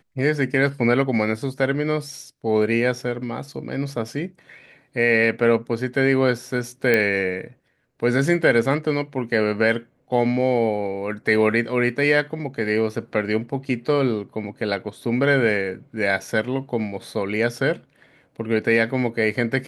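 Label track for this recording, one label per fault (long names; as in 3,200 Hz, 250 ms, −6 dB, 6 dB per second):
6.940000	6.940000	click −7 dBFS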